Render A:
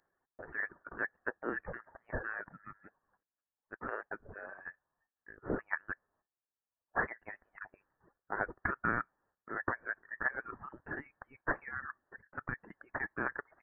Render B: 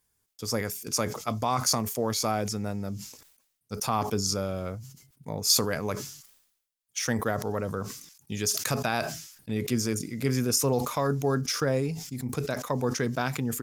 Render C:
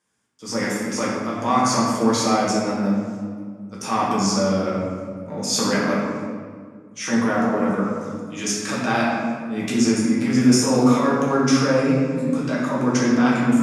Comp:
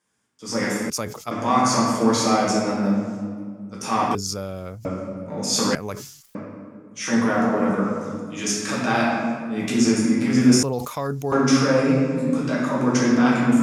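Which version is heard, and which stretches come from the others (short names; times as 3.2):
C
0.9–1.31 from B
4.15–4.85 from B
5.75–6.35 from B
10.63–11.32 from B
not used: A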